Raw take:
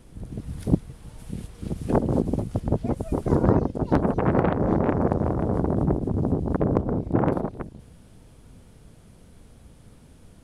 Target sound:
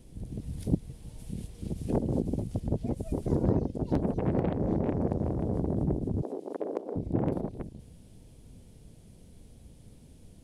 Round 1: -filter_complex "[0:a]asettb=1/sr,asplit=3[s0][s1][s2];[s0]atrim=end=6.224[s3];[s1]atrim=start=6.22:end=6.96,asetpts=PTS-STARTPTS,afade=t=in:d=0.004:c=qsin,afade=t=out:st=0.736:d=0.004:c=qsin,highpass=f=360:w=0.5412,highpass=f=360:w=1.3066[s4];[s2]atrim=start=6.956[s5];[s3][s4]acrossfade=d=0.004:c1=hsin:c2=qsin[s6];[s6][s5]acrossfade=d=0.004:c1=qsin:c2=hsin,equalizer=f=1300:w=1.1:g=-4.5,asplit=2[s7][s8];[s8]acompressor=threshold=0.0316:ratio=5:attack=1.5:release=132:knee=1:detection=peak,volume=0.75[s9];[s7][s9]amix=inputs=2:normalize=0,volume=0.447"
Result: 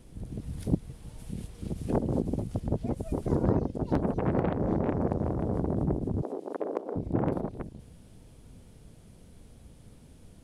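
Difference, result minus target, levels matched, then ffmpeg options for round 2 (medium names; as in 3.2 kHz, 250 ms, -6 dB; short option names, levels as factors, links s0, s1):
1 kHz band +3.5 dB
-filter_complex "[0:a]asettb=1/sr,asplit=3[s0][s1][s2];[s0]atrim=end=6.224[s3];[s1]atrim=start=6.22:end=6.96,asetpts=PTS-STARTPTS,afade=t=in:d=0.004:c=qsin,afade=t=out:st=0.736:d=0.004:c=qsin,highpass=f=360:w=0.5412,highpass=f=360:w=1.3066[s4];[s2]atrim=start=6.956[s5];[s3][s4]acrossfade=d=0.004:c1=hsin:c2=qsin[s6];[s6][s5]acrossfade=d=0.004:c1=qsin:c2=hsin,equalizer=f=1300:w=1.1:g=-12.5,asplit=2[s7][s8];[s8]acompressor=threshold=0.0316:ratio=5:attack=1.5:release=132:knee=1:detection=peak,volume=0.75[s9];[s7][s9]amix=inputs=2:normalize=0,volume=0.447"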